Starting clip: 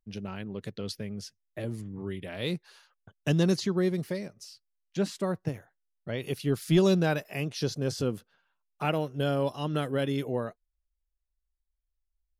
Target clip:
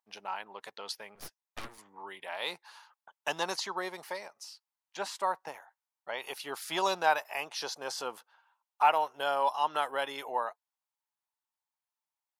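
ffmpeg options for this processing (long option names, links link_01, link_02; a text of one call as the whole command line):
ffmpeg -i in.wav -filter_complex "[0:a]highpass=frequency=890:width_type=q:width=5,asettb=1/sr,asplit=3[link_01][link_02][link_03];[link_01]atrim=end=1.154[link_04];[link_02]atrim=start=1.15:end=1.78,asetpts=PTS-STARTPTS,afade=type=in:duration=0.004:curve=qsin,afade=type=out:start_time=0.626:duration=0.004:curve=qsin,aeval=exprs='0.0531*(cos(1*acos(clip(val(0)/0.0531,-1,1)))-cos(1*PI/2))+0.0188*(cos(3*acos(clip(val(0)/0.0531,-1,1)))-cos(3*PI/2))+0.00188*(cos(5*acos(clip(val(0)/0.0531,-1,1)))-cos(5*PI/2))+0.00596*(cos(7*acos(clip(val(0)/0.0531,-1,1)))-cos(7*PI/2))+0.00944*(cos(8*acos(clip(val(0)/0.0531,-1,1)))-cos(8*PI/2))':channel_layout=same[link_05];[link_03]atrim=start=1.776[link_06];[link_04][link_05]acrossfade=duration=0.004:curve1=hsin:curve2=qsin[link_07];[link_07][link_06]acrossfade=duration=0.004:curve1=qsin:curve2=hsin" out.wav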